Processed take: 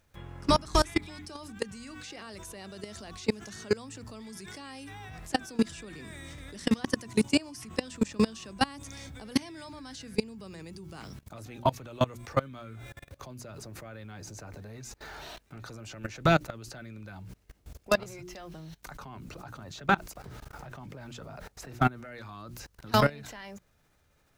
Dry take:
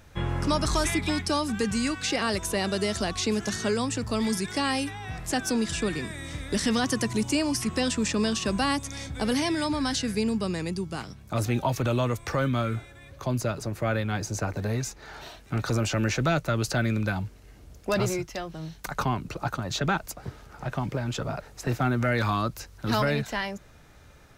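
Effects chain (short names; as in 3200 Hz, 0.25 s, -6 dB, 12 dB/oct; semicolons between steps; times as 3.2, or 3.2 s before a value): bit-crush 10-bit; notches 60/120/180/240/300/360 Hz; level quantiser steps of 24 dB; gain +4 dB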